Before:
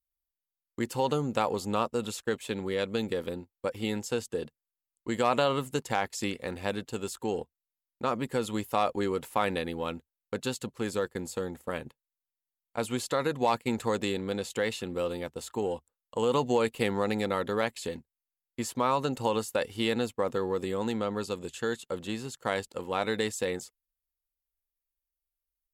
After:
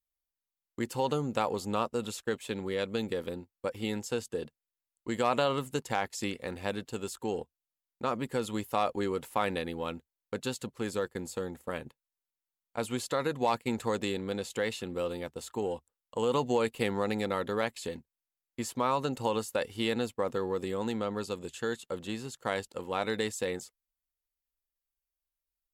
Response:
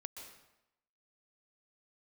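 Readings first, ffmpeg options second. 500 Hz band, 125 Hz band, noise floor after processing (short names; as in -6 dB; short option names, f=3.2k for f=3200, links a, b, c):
-2.0 dB, -2.0 dB, under -85 dBFS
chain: -af "volume=-2dB" -ar 44100 -c:a aac -b:a 192k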